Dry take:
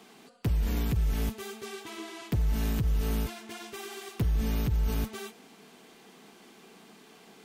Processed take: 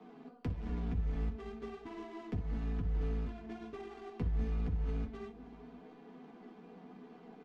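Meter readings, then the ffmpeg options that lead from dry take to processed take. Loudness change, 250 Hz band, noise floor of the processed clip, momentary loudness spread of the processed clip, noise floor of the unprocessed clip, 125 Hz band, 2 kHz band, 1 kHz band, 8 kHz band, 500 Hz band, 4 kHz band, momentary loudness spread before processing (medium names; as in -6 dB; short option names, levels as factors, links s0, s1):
-7.5 dB, -6.0 dB, -56 dBFS, 18 LU, -55 dBFS, -7.5 dB, -12.0 dB, -7.0 dB, under -25 dB, -5.0 dB, -18.0 dB, 12 LU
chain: -filter_complex "[0:a]asplit=2[s0][s1];[s1]adelay=187,lowpass=f=2000:p=1,volume=0.0708,asplit=2[s2][s3];[s3]adelay=187,lowpass=f=2000:p=1,volume=0.54,asplit=2[s4][s5];[s5]adelay=187,lowpass=f=2000:p=1,volume=0.54,asplit=2[s6][s7];[s7]adelay=187,lowpass=f=2000:p=1,volume=0.54[s8];[s2][s4][s6][s8]amix=inputs=4:normalize=0[s9];[s0][s9]amix=inputs=2:normalize=0,acrossover=split=110|540|1500|5600[s10][s11][s12][s13][s14];[s10]acompressor=threshold=0.0178:ratio=4[s15];[s11]acompressor=threshold=0.00562:ratio=4[s16];[s12]acompressor=threshold=0.00158:ratio=4[s17];[s13]acompressor=threshold=0.002:ratio=4[s18];[s14]acompressor=threshold=0.00178:ratio=4[s19];[s15][s16][s17][s18][s19]amix=inputs=5:normalize=0,lowpass=8400,equalizer=f=6000:w=0.67:g=6,asplit=2[s20][s21];[s21]aecho=0:1:12|57:0.501|0.316[s22];[s20][s22]amix=inputs=2:normalize=0,adynamicsmooth=sensitivity=4.5:basefreq=830,flanger=delay=6.4:depth=7:regen=-55:speed=0.34:shape=triangular,bandreject=f=530:w=12,aecho=1:1:4.1:0.47,volume=1.78"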